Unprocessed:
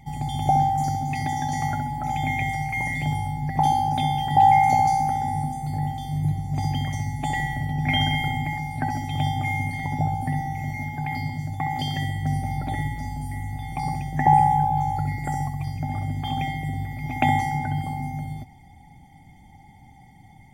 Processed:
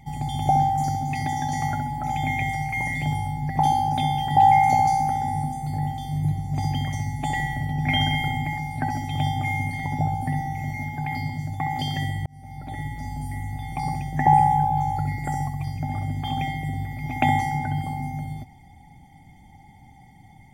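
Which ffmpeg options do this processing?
ffmpeg -i in.wav -filter_complex "[0:a]asplit=2[link_01][link_02];[link_01]atrim=end=12.26,asetpts=PTS-STARTPTS,afade=type=out:start_time=12.256:duration=0.004:curve=hsin[link_03];[link_02]atrim=start=12.26,asetpts=PTS-STARTPTS,afade=type=in:duration=0.94[link_04];[link_03][link_04]concat=n=2:v=0:a=1" out.wav

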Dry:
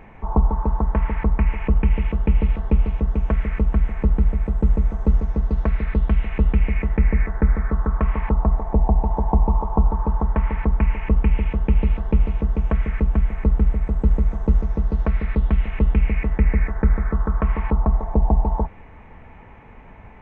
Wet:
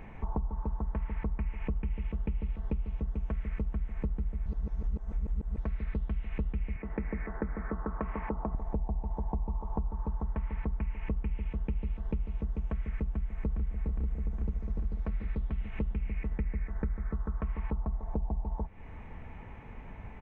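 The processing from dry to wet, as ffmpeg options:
ffmpeg -i in.wav -filter_complex "[0:a]asettb=1/sr,asplit=3[link_01][link_02][link_03];[link_01]atrim=end=6.764[link_04];[link_02]atrim=start=6.76:end=8.55,asetpts=PTS-STARTPTS,afade=type=in:duration=0.004:curve=qsin,afade=type=out:start_time=1.786:duration=0.004:curve=qsin,acrossover=split=190 2300:gain=0.224 1 0.158[link_05][link_06][link_07];[link_05][link_06][link_07]amix=inputs=3:normalize=0[link_08];[link_03]atrim=start=8.546[link_09];[link_04][link_08]acrossfade=duration=0.004:curve1=hsin:curve2=qsin[link_10];[link_10][link_09]acrossfade=duration=0.004:curve1=qsin:curve2=hsin,asplit=2[link_11][link_12];[link_12]afade=type=in:start_time=13.08:duration=0.01,afade=type=out:start_time=13.77:duration=0.01,aecho=0:1:410|820|1230|1640|2050|2460|2870|3280|3690|4100|4510|4920:0.944061|0.660843|0.46259|0.323813|0.226669|0.158668|0.111068|0.0777475|0.0544232|0.0380963|0.0266674|0.0186672[link_13];[link_11][link_13]amix=inputs=2:normalize=0,asplit=3[link_14][link_15][link_16];[link_14]atrim=end=4.462[link_17];[link_15]atrim=start=4.458:end=5.582,asetpts=PTS-STARTPTS,areverse[link_18];[link_16]atrim=start=5.578[link_19];[link_17][link_18]acrossfade=duration=0.004:curve1=hsin:curve2=hsin[link_20];[link_20][link_19]acrossfade=duration=0.004:curve1=hsin:curve2=hsin,equalizer=frequency=930:width=0.31:gain=-5.5,acompressor=threshold=-30dB:ratio=6" out.wav

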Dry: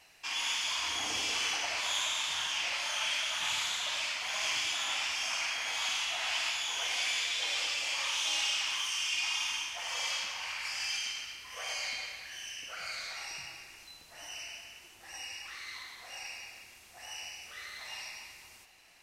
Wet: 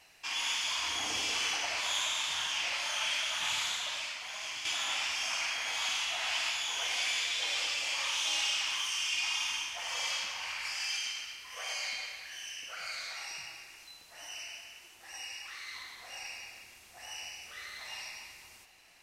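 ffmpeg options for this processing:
ffmpeg -i in.wav -filter_complex "[0:a]asettb=1/sr,asplit=3[link_01][link_02][link_03];[link_01]atrim=end=10.734[link_04];[link_02]atrim=start=10.73:end=15.74,asetpts=PTS-STARTPTS,afade=type=in:duration=0.004:curve=qsin,afade=type=out:start_time=5.006:duration=0.004:curve=qsin,lowshelf=frequency=340:gain=-6.5[link_05];[link_03]atrim=start=15.736[link_06];[link_04][link_05]acrossfade=duration=0.004:curve1=hsin:curve2=qsin[link_07];[link_07][link_06]acrossfade=duration=0.004:curve1=qsin:curve2=hsin,asplit=2[link_08][link_09];[link_08]atrim=end=4.65,asetpts=PTS-STARTPTS,afade=type=out:start_time=3.7:duration=0.95:curve=qua:silence=0.421697[link_10];[link_09]atrim=start=4.65,asetpts=PTS-STARTPTS,afade=type=in:duration=0.004:curve=hsin:silence=0.421697[link_11];[link_10][link_11]concat=n=2:v=0:a=1" out.wav

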